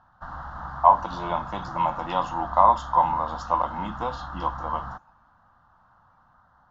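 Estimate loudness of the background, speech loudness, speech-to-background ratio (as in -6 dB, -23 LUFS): -37.0 LUFS, -24.5 LUFS, 12.5 dB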